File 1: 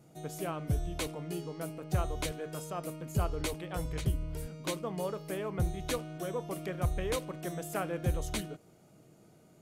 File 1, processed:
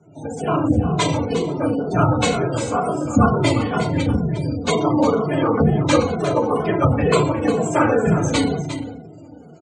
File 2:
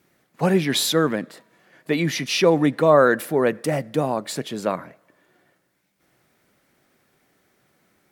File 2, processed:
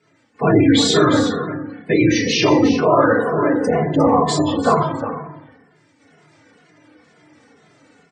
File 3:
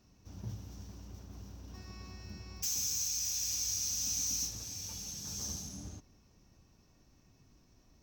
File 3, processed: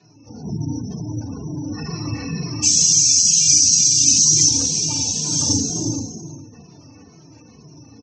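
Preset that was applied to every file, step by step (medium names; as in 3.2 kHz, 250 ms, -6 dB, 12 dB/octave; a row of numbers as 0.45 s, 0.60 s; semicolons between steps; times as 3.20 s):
whisper effect; high-pass 97 Hz 24 dB/octave; FDN reverb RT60 0.88 s, low-frequency decay 1.25×, high-frequency decay 0.85×, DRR -1 dB; in parallel at -3 dB: peak limiter -11.5 dBFS; on the sum: level rider gain up to 6 dB; spectral gate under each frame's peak -25 dB strong; steep low-pass 8.6 kHz 72 dB/octave; dynamic bell 1.1 kHz, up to +6 dB, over -39 dBFS, Q 3.1; on a send: delay 355 ms -11 dB; on the sum: endless flanger 2.4 ms -2.1 Hz; peak normalisation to -1.5 dBFS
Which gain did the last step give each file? +5.5 dB, +1.0 dB, +10.0 dB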